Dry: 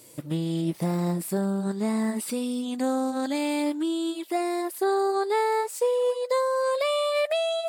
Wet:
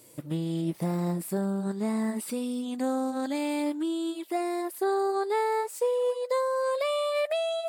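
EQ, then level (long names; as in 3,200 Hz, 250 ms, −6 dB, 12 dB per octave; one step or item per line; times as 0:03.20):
parametric band 4,900 Hz −3 dB 2 octaves
−2.5 dB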